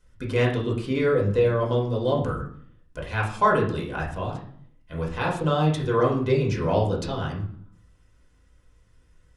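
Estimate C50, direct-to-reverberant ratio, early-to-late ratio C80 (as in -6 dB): 7.0 dB, -4.0 dB, 11.0 dB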